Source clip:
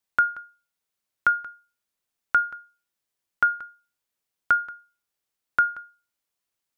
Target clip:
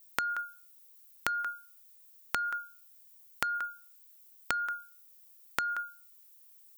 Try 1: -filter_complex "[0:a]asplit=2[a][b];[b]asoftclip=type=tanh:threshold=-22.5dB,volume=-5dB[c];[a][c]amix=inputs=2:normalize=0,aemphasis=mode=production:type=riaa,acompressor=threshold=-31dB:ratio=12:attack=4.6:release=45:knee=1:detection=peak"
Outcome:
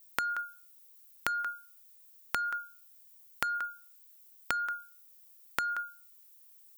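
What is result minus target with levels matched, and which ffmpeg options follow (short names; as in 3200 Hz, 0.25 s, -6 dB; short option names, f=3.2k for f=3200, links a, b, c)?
soft clip: distortion +7 dB
-filter_complex "[0:a]asplit=2[a][b];[b]asoftclip=type=tanh:threshold=-16dB,volume=-5dB[c];[a][c]amix=inputs=2:normalize=0,aemphasis=mode=production:type=riaa,acompressor=threshold=-31dB:ratio=12:attack=4.6:release=45:knee=1:detection=peak"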